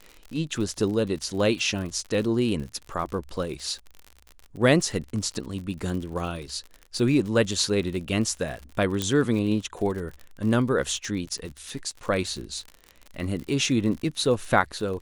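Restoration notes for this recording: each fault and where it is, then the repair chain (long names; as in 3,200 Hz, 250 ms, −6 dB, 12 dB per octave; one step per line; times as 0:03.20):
surface crackle 54 per second −33 dBFS
0:09.02: click −11 dBFS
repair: click removal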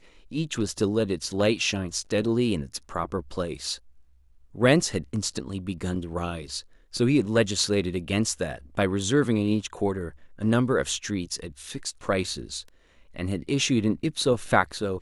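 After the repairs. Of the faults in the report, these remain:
0:09.02: click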